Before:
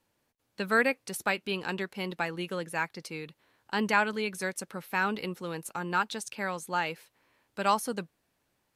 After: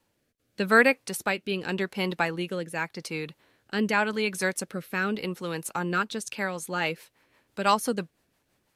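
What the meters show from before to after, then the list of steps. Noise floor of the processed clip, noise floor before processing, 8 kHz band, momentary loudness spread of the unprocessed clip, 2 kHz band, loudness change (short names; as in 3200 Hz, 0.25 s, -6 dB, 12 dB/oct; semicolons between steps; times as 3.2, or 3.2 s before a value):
-74 dBFS, -77 dBFS, +4.0 dB, 13 LU, +3.5 dB, +3.5 dB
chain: rotary speaker horn 0.85 Hz, later 6 Hz, at 6; gain +6.5 dB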